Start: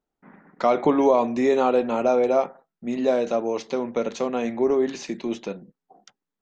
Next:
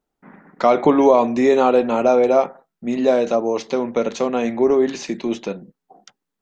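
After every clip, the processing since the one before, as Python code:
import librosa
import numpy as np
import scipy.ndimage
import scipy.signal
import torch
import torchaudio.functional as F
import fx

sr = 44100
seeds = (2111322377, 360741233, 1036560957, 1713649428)

y = fx.spec_box(x, sr, start_s=3.35, length_s=0.21, low_hz=1300.0, high_hz=4000.0, gain_db=-9)
y = y * librosa.db_to_amplitude(5.0)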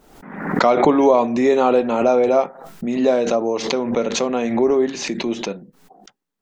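y = fx.pre_swell(x, sr, db_per_s=64.0)
y = y * librosa.db_to_amplitude(-1.0)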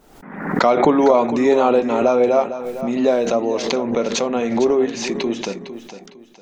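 y = fx.echo_feedback(x, sr, ms=456, feedback_pct=30, wet_db=-12.0)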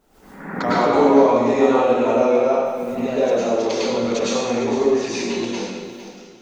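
y = fx.rev_plate(x, sr, seeds[0], rt60_s=1.2, hf_ratio=1.0, predelay_ms=90, drr_db=-9.5)
y = y * librosa.db_to_amplitude(-10.0)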